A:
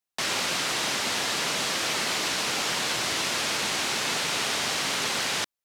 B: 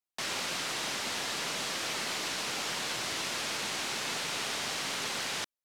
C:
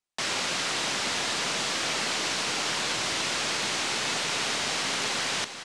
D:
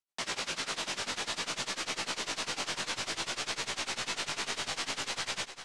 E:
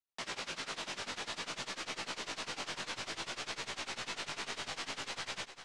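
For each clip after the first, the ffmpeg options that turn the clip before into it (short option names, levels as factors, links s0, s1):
-af "aeval=exprs='0.2*(cos(1*acos(clip(val(0)/0.2,-1,1)))-cos(1*PI/2))+0.00398*(cos(4*acos(clip(val(0)/0.2,-1,1)))-cos(4*PI/2))':c=same,volume=0.447"
-filter_complex "[0:a]lowpass=f=9700:w=0.5412,lowpass=f=9700:w=1.3066,asplit=2[s0][s1];[s1]aecho=0:1:396|792|1188|1584|1980|2376:0.251|0.141|0.0788|0.0441|0.0247|0.0138[s2];[s0][s2]amix=inputs=2:normalize=0,volume=1.88"
-af "asubboost=boost=2.5:cutoff=100,tremolo=f=10:d=0.98,flanger=delay=15.5:depth=4.8:speed=0.55"
-af "highshelf=f=6700:g=-7.5,volume=0.596"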